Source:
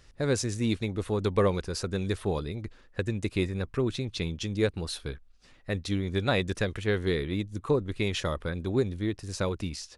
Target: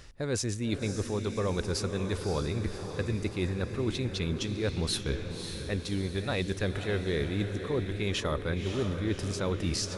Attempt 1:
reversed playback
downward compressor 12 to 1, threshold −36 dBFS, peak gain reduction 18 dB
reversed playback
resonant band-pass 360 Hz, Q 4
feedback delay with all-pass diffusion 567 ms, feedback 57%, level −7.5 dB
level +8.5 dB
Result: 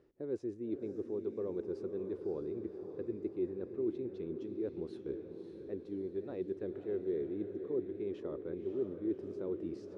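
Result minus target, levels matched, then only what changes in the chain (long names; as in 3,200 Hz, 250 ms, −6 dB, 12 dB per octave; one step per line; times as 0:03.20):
500 Hz band +4.0 dB
remove: resonant band-pass 360 Hz, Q 4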